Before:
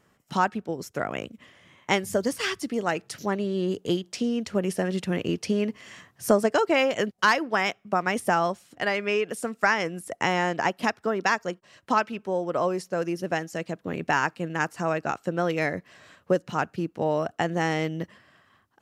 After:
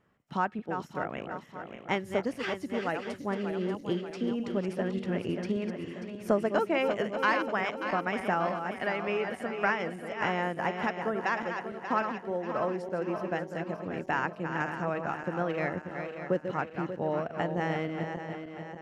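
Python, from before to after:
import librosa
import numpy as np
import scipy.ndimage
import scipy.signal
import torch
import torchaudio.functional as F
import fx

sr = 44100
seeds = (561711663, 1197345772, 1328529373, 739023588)

y = fx.reverse_delay_fb(x, sr, ms=293, feedback_pct=70, wet_db=-7.0)
y = fx.bass_treble(y, sr, bass_db=1, treble_db=-14)
y = y * 10.0 ** (-6.0 / 20.0)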